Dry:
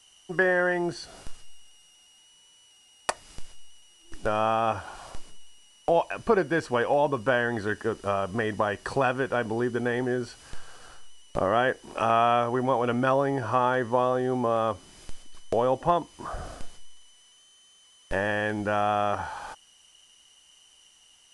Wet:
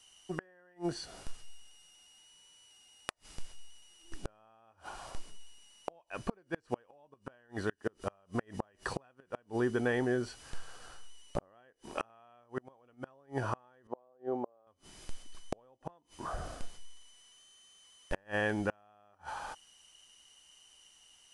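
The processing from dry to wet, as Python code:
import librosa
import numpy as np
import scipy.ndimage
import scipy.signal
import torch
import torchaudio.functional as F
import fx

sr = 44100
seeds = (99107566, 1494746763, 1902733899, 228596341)

y = fx.gate_flip(x, sr, shuts_db=-16.0, range_db=-35)
y = fx.bandpass_q(y, sr, hz=540.0, q=1.2, at=(13.87, 14.67))
y = y * 10.0 ** (-3.5 / 20.0)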